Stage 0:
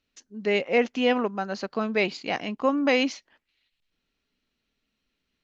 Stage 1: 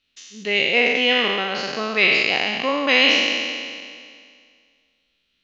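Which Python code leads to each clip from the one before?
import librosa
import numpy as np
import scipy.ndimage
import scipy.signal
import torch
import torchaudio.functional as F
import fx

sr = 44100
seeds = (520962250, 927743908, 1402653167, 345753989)

y = fx.spec_trails(x, sr, decay_s=2.08)
y = fx.peak_eq(y, sr, hz=3200.0, db=13.5, octaves=1.4)
y = y * 10.0 ** (-3.0 / 20.0)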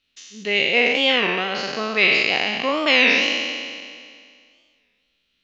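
y = fx.record_warp(x, sr, rpm=33.33, depth_cents=160.0)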